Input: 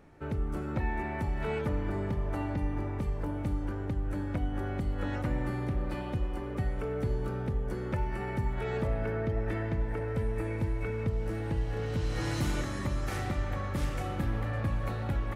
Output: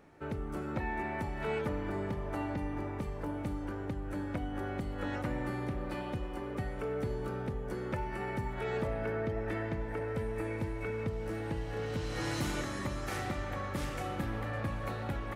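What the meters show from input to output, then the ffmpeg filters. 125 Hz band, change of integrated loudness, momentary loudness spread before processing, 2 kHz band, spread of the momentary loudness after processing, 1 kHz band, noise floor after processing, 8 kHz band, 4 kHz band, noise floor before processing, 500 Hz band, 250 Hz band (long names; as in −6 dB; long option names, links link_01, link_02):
−6.0 dB, −3.5 dB, 2 LU, 0.0 dB, 4 LU, 0.0 dB, −39 dBFS, 0.0 dB, 0.0 dB, −36 dBFS, −1.0 dB, −2.0 dB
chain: -af "lowshelf=frequency=130:gain=-10"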